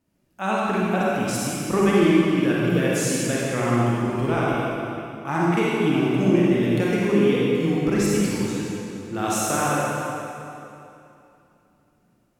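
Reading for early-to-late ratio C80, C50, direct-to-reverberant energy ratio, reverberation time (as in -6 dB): -2.5 dB, -5.0 dB, -6.5 dB, 2.8 s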